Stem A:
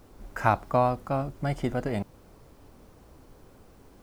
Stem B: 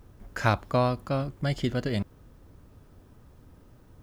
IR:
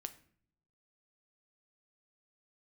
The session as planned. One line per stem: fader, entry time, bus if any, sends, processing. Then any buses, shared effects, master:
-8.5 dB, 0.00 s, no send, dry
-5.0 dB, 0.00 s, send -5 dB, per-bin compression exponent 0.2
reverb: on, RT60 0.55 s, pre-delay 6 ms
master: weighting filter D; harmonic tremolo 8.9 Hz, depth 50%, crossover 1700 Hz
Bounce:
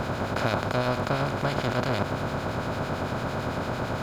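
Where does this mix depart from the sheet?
stem B: polarity flipped; master: missing weighting filter D

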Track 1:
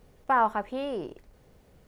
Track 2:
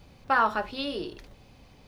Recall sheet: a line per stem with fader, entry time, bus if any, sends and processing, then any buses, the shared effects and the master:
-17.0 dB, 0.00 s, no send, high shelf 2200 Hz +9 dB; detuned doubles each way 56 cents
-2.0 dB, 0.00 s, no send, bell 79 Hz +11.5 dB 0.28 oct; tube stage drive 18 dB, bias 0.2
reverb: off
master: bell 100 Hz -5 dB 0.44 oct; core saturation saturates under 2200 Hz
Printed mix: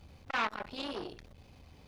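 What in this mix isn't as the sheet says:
stem 2: polarity flipped; master: missing bell 100 Hz -5 dB 0.44 oct

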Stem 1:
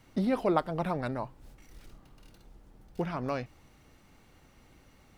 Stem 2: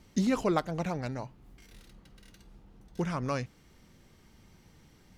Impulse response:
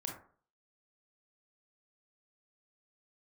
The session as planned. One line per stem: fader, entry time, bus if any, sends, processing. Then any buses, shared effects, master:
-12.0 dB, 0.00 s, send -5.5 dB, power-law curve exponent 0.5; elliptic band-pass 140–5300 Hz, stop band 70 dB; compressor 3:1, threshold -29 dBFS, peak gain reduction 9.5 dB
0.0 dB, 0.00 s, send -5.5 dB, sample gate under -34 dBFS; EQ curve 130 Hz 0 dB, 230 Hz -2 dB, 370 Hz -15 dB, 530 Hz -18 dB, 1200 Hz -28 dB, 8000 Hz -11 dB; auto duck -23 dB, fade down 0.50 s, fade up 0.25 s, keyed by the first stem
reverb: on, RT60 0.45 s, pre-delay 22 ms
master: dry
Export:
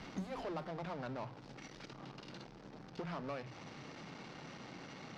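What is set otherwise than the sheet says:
stem 2: missing sample gate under -34 dBFS; reverb return -9.5 dB

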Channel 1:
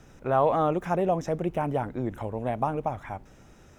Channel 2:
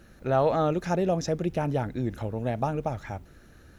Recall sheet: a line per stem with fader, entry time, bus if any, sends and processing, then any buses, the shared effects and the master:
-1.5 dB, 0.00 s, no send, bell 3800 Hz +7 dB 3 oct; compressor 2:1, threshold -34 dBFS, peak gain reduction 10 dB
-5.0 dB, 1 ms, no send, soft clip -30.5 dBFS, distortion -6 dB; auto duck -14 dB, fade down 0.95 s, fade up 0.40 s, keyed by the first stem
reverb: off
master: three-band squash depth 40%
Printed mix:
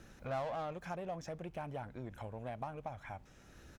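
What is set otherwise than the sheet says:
stem 1 -1.5 dB -> -10.5 dB; master: missing three-band squash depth 40%

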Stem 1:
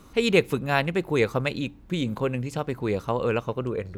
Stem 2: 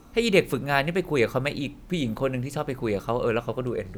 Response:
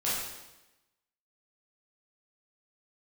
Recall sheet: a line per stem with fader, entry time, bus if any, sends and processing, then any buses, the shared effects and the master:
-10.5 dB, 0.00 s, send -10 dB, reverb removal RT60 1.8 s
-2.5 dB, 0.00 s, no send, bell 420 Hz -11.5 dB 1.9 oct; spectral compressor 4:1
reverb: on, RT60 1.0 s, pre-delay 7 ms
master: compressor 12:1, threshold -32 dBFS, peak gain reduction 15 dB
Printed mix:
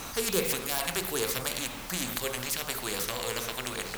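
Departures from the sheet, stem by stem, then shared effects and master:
stem 2: polarity flipped; master: missing compressor 12:1, threshold -32 dBFS, peak gain reduction 15 dB

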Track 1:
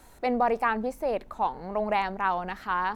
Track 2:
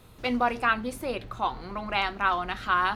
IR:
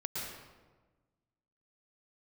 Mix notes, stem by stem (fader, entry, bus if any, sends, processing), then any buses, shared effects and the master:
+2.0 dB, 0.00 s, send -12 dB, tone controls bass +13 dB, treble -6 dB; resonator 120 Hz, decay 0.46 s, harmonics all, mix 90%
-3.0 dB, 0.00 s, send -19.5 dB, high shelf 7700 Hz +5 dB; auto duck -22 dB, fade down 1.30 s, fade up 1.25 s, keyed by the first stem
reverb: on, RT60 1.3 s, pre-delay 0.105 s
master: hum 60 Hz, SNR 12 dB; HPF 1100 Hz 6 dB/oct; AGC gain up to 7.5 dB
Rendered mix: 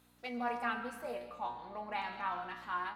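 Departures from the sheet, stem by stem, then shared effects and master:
stem 1 +2.0 dB -> -5.5 dB; stem 2 -3.0 dB -> -12.5 dB

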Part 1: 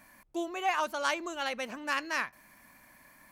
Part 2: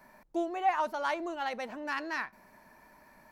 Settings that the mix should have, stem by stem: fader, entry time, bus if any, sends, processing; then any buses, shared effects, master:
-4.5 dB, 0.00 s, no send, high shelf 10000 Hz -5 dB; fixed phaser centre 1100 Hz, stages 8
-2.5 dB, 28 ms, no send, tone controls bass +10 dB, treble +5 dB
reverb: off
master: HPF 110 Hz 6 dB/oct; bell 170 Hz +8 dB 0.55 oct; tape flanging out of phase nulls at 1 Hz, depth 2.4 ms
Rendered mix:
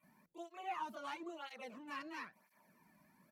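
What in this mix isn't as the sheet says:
stem 1 -4.5 dB -> -13.5 dB; stem 2 -2.5 dB -> -12.0 dB

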